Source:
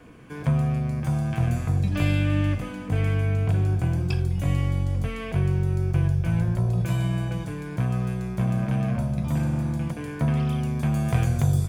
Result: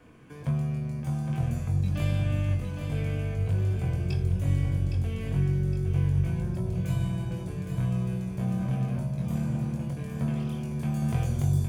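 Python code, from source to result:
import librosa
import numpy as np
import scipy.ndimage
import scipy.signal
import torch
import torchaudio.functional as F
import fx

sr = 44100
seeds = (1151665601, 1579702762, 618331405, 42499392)

p1 = x + fx.echo_feedback(x, sr, ms=813, feedback_pct=48, wet_db=-7, dry=0)
p2 = fx.dynamic_eq(p1, sr, hz=1500.0, q=0.85, threshold_db=-49.0, ratio=4.0, max_db=-5)
p3 = fx.doubler(p2, sr, ms=22.0, db=-5)
y = F.gain(torch.from_numpy(p3), -6.5).numpy()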